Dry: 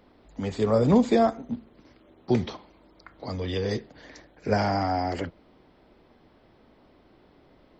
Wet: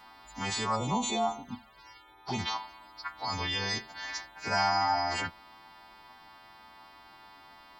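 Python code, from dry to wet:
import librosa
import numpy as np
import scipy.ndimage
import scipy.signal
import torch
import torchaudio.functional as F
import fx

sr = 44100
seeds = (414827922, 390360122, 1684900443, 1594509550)

p1 = fx.freq_snap(x, sr, grid_st=2)
p2 = fx.low_shelf_res(p1, sr, hz=670.0, db=-9.0, q=3.0)
p3 = fx.env_flanger(p2, sr, rest_ms=2.5, full_db=-26.0, at=(0.75, 2.38), fade=0.02)
p4 = fx.over_compress(p3, sr, threshold_db=-38.0, ratio=-1.0)
p5 = p3 + (p4 * librosa.db_to_amplitude(-2.0))
y = p5 * librosa.db_to_amplitude(-3.0)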